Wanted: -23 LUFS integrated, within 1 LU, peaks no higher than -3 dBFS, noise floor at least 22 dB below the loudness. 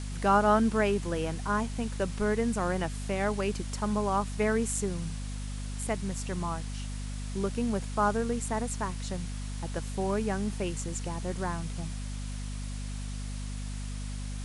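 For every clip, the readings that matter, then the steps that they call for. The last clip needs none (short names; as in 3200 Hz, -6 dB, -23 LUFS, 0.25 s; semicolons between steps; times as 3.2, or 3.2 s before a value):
hum 50 Hz; harmonics up to 250 Hz; hum level -34 dBFS; noise floor -36 dBFS; noise floor target -54 dBFS; loudness -31.5 LUFS; peak -12.0 dBFS; loudness target -23.0 LUFS
-> de-hum 50 Hz, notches 5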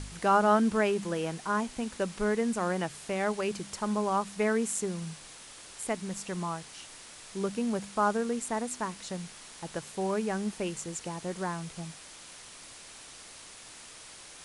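hum none; noise floor -49 dBFS; noise floor target -54 dBFS
-> denoiser 6 dB, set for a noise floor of -49 dBFS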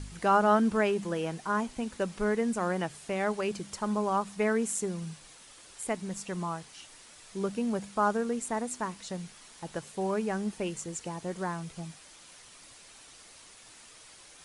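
noise floor -53 dBFS; noise floor target -54 dBFS
-> denoiser 6 dB, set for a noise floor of -53 dBFS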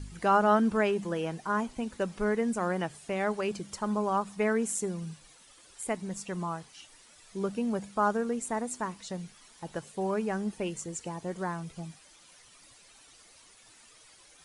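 noise floor -57 dBFS; loudness -31.5 LUFS; peak -12.0 dBFS; loudness target -23.0 LUFS
-> gain +8.5 dB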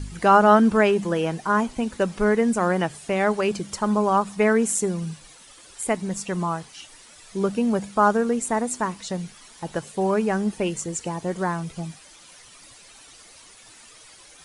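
loudness -23.0 LUFS; peak -3.5 dBFS; noise floor -49 dBFS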